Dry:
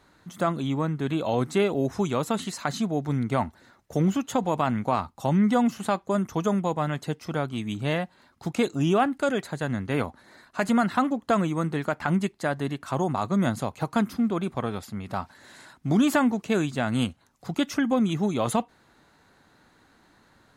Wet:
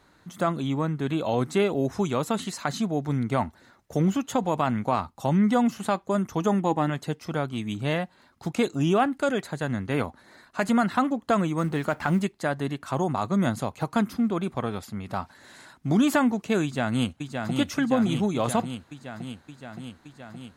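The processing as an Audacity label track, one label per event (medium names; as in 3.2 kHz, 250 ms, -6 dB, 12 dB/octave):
6.400000	6.900000	small resonant body resonances 310/820/1800/2800 Hz, height 9 dB
11.580000	12.240000	companding laws mixed up coded by mu
16.630000	17.560000	echo throw 570 ms, feedback 75%, level -4.5 dB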